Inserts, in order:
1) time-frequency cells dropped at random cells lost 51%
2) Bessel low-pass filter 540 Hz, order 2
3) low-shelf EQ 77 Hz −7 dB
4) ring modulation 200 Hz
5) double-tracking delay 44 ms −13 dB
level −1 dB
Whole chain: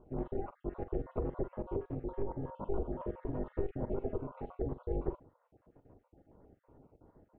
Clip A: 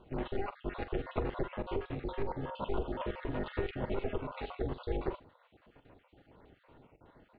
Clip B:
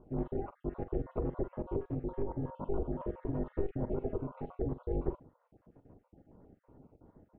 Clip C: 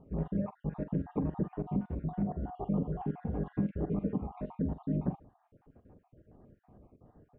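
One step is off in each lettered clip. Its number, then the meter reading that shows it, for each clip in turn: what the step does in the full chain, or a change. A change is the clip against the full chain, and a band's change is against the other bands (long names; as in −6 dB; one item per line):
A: 2, 2 kHz band +15.5 dB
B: 3, 125 Hz band +2.0 dB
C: 4, change in crest factor −2.5 dB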